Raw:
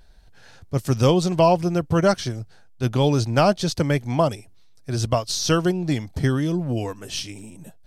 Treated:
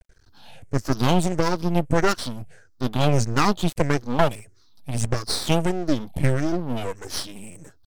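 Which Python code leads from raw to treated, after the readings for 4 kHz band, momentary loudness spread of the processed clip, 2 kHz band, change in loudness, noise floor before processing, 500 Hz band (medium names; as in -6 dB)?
-1.0 dB, 11 LU, +1.5 dB, -2.0 dB, -48 dBFS, -4.0 dB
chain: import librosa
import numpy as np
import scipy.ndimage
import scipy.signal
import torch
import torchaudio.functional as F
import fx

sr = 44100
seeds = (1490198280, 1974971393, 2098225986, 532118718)

y = fx.spec_ripple(x, sr, per_octave=0.5, drift_hz=-1.6, depth_db=17)
y = np.maximum(y, 0.0)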